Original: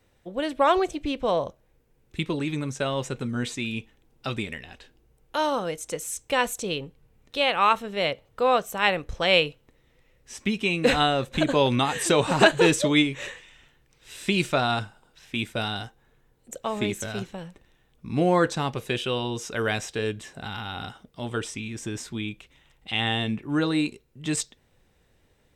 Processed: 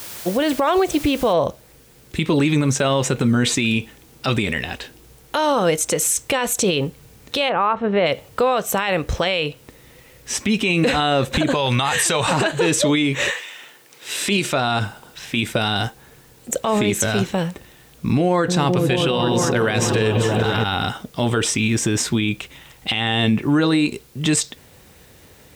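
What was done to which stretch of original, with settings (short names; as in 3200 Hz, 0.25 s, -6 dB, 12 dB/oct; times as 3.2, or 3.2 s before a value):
1.33 noise floor step -51 dB -70 dB
7.48–8.05 LPF 1100 Hz -> 1900 Hz
11.54–12.33 bell 290 Hz -12 dB 1.4 oct
13.3–14.52 HPF 560 Hz -> 150 Hz
18.27–20.64 repeats that get brighter 0.209 s, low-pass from 200 Hz, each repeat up 1 oct, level -3 dB
whole clip: HPF 59 Hz; compressor 6:1, threshold -26 dBFS; maximiser +25 dB; gain -8.5 dB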